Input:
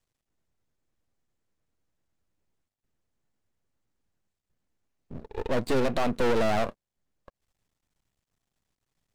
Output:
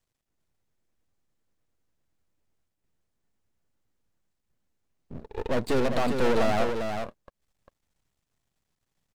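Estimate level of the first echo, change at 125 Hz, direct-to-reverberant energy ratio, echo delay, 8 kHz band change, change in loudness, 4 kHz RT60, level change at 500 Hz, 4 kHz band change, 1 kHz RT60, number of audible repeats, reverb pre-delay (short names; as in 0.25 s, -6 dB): -6.0 dB, +1.0 dB, none, 0.398 s, +1.0 dB, +0.5 dB, none, +1.0 dB, +1.0 dB, none, 1, none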